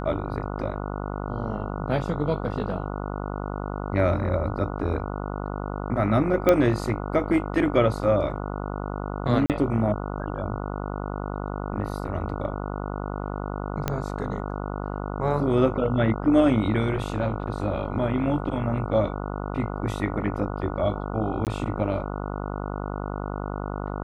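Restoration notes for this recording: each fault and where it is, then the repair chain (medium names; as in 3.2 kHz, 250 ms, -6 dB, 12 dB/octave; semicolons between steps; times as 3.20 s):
buzz 50 Hz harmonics 29 -31 dBFS
6.49 s: pop -7 dBFS
9.46–9.50 s: dropout 38 ms
13.88 s: pop -10 dBFS
21.45–21.47 s: dropout 18 ms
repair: de-click; de-hum 50 Hz, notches 29; interpolate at 9.46 s, 38 ms; interpolate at 21.45 s, 18 ms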